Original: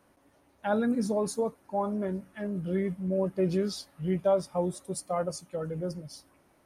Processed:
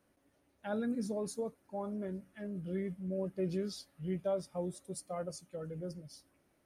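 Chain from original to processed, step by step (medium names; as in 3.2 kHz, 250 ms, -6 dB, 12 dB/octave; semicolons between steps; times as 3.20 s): peaking EQ 960 Hz -6.5 dB 0.89 oct; trim -7.5 dB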